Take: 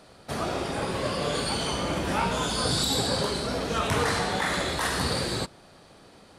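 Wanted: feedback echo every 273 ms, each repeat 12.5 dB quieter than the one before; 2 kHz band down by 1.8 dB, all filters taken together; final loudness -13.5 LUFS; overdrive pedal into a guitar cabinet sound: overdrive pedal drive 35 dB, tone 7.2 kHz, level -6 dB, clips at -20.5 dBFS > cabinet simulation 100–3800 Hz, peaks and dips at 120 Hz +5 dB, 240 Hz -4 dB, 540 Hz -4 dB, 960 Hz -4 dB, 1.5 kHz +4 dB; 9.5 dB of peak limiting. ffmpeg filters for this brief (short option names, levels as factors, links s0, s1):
-filter_complex "[0:a]equalizer=f=2000:t=o:g=-5,alimiter=limit=0.075:level=0:latency=1,aecho=1:1:273|546|819:0.237|0.0569|0.0137,asplit=2[s0][s1];[s1]highpass=f=720:p=1,volume=56.2,asoftclip=type=tanh:threshold=0.0944[s2];[s0][s2]amix=inputs=2:normalize=0,lowpass=f=7200:p=1,volume=0.501,highpass=100,equalizer=f=120:t=q:w=4:g=5,equalizer=f=240:t=q:w=4:g=-4,equalizer=f=540:t=q:w=4:g=-4,equalizer=f=960:t=q:w=4:g=-4,equalizer=f=1500:t=q:w=4:g=4,lowpass=f=3800:w=0.5412,lowpass=f=3800:w=1.3066,volume=5.01"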